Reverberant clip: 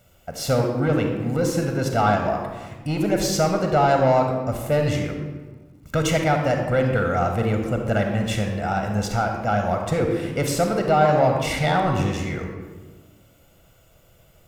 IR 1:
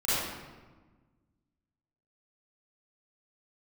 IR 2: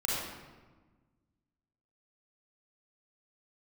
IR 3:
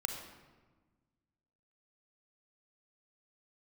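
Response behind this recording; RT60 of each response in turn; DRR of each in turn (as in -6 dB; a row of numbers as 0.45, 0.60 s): 3; 1.3, 1.3, 1.4 s; -13.5, -6.5, 3.5 dB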